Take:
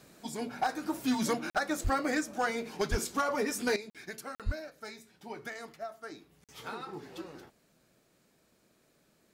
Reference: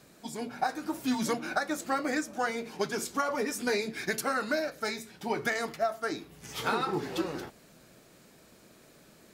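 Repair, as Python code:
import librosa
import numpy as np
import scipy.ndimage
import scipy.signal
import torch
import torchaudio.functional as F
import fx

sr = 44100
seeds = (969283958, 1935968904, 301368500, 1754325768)

y = fx.fix_declip(x, sr, threshold_db=-22.0)
y = fx.highpass(y, sr, hz=140.0, slope=24, at=(1.83, 1.95), fade=0.02)
y = fx.highpass(y, sr, hz=140.0, slope=24, at=(2.9, 3.02), fade=0.02)
y = fx.highpass(y, sr, hz=140.0, slope=24, at=(4.45, 4.57), fade=0.02)
y = fx.fix_interpolate(y, sr, at_s=(1.5, 3.9, 4.35, 6.44), length_ms=47.0)
y = fx.gain(y, sr, db=fx.steps((0.0, 0.0), (3.76, 11.5)))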